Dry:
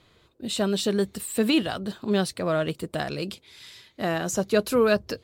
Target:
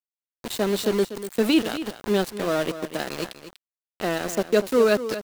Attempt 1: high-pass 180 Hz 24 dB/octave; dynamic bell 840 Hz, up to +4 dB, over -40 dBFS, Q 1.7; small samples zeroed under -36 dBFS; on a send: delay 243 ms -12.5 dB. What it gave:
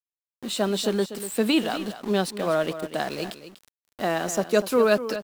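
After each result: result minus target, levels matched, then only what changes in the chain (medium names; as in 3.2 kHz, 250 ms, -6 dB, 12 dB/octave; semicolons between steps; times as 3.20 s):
small samples zeroed: distortion -9 dB; 1 kHz band +3.0 dB
change: small samples zeroed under -27 dBFS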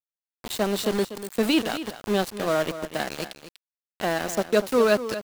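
1 kHz band +3.0 dB
change: dynamic bell 370 Hz, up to +4 dB, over -40 dBFS, Q 1.7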